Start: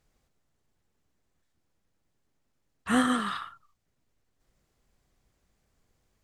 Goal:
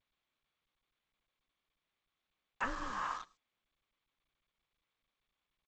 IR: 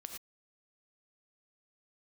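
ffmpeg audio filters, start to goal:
-filter_complex "[0:a]agate=range=-35dB:threshold=-57dB:ratio=16:detection=peak,aecho=1:1:133|266|399:0.0891|0.0303|0.0103,adynamicequalizer=threshold=0.0126:dfrequency=250:dqfactor=1.2:tfrequency=250:tqfactor=1.2:attack=5:release=100:ratio=0.375:range=3.5:mode=boostabove:tftype=bell,acompressor=threshold=-32dB:ratio=20,highpass=frequency=340:width_type=q:width=0.5412,highpass=frequency=340:width_type=q:width=1.307,lowpass=frequency=2600:width_type=q:width=0.5176,lowpass=frequency=2600:width_type=q:width=0.7071,lowpass=frequency=2600:width_type=q:width=1.932,afreqshift=-230,asetrate=48510,aresample=44100,acrusher=bits=7:mix=0:aa=0.5,asplit=2[link_01][link_02];[link_02]tiltshelf=frequency=700:gain=4[link_03];[1:a]atrim=start_sample=2205,asetrate=43659,aresample=44100,highshelf=frequency=5900:gain=10[link_04];[link_03][link_04]afir=irnorm=-1:irlink=0,volume=-14dB[link_05];[link_01][link_05]amix=inputs=2:normalize=0,volume=2dB" -ar 16000 -c:a g722

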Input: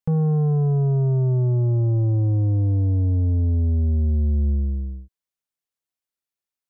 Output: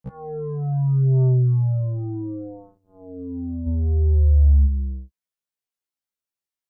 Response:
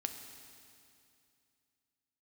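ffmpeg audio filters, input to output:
-filter_complex "[0:a]asplit=3[link_01][link_02][link_03];[link_01]afade=type=out:start_time=3.66:duration=0.02[link_04];[link_02]acontrast=38,afade=type=in:start_time=3.66:duration=0.02,afade=type=out:start_time=4.66:duration=0.02[link_05];[link_03]afade=type=in:start_time=4.66:duration=0.02[link_06];[link_04][link_05][link_06]amix=inputs=3:normalize=0,afftfilt=real='re*1.73*eq(mod(b,3),0)':imag='im*1.73*eq(mod(b,3),0)':win_size=2048:overlap=0.75"

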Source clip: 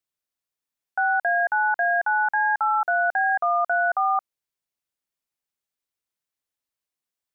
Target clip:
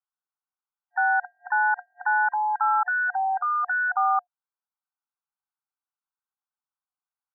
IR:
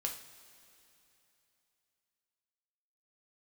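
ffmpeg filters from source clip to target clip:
-filter_complex "[0:a]afftfilt=real='re*between(b*sr/4096,720,1600)':imag='im*between(b*sr/4096,720,1600)':win_size=4096:overlap=0.75,asplit=2[link_01][link_02];[link_02]asetrate=52444,aresample=44100,atempo=0.840896,volume=-18dB[link_03];[link_01][link_03]amix=inputs=2:normalize=0"

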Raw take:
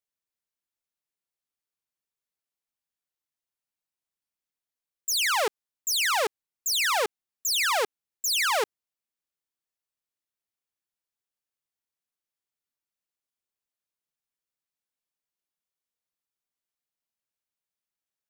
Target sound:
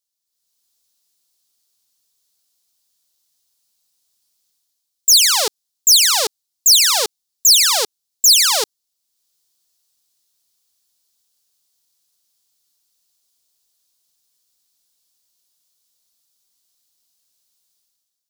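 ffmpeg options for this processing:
ffmpeg -i in.wav -af "highshelf=frequency=3100:width_type=q:width=1.5:gain=11.5,dynaudnorm=framelen=100:gausssize=9:maxgain=13dB,volume=-1dB" out.wav

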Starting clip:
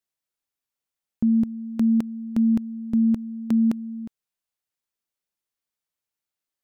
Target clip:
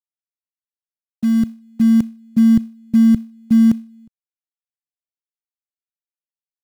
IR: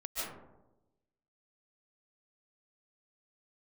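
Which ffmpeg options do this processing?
-filter_complex "[0:a]agate=range=-33dB:threshold=-21dB:ratio=3:detection=peak,acrossover=split=190[link_01][link_02];[link_01]dynaudnorm=framelen=270:gausssize=11:maxgain=15dB[link_03];[link_02]acrusher=bits=4:mode=log:mix=0:aa=0.000001[link_04];[link_03][link_04]amix=inputs=2:normalize=0"

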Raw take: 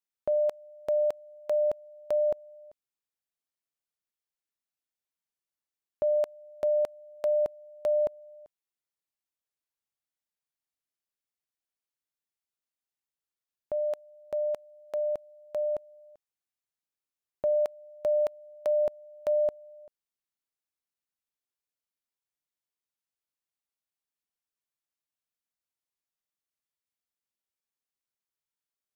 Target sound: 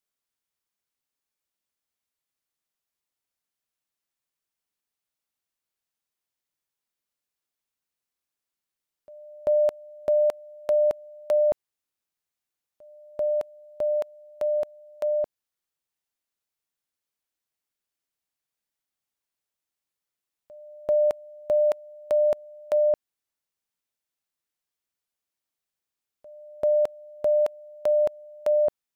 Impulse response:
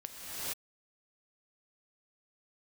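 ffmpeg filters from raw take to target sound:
-af "areverse,volume=4.5dB"

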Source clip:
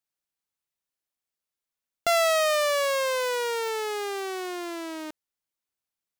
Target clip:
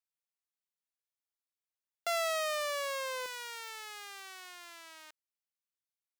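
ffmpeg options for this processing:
ffmpeg -i in.wav -af "asetnsamples=nb_out_samples=441:pad=0,asendcmd='3.26 highpass f 1300',highpass=600,volume=-9dB" out.wav

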